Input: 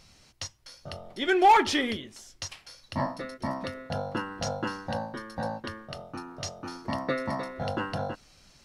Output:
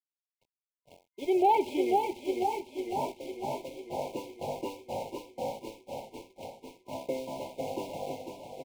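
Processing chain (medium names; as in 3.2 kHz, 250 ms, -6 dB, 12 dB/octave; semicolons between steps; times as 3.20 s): tracing distortion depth 0.19 ms; distance through air 380 m; in parallel at -1.5 dB: compression, threshold -40 dBFS, peak gain reduction 21.5 dB; on the sum: cabinet simulation 210–5100 Hz, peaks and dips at 210 Hz -8 dB, 400 Hz +7 dB, 580 Hz +3 dB, 3.4 kHz -4 dB; feedback delay 491 ms, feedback 59%, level -6.5 dB; small samples zeroed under -34.5 dBFS; expander -28 dBFS; FFT band-reject 1–2.1 kHz; modulated delay 501 ms, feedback 63%, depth 56 cents, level -8 dB; trim -5.5 dB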